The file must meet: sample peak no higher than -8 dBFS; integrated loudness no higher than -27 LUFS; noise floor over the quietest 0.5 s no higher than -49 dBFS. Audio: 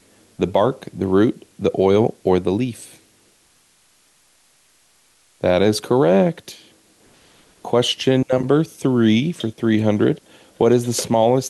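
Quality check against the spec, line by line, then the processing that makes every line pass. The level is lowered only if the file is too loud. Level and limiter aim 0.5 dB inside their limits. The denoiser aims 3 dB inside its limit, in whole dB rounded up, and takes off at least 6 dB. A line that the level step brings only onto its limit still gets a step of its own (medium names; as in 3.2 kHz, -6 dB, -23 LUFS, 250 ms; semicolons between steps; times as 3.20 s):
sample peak -5.0 dBFS: fail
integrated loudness -18.5 LUFS: fail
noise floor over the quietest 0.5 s -58 dBFS: pass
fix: trim -9 dB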